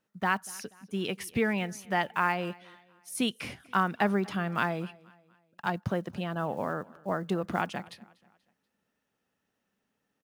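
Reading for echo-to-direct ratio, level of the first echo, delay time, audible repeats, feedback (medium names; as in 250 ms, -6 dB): -22.5 dB, -23.5 dB, 241 ms, 2, 43%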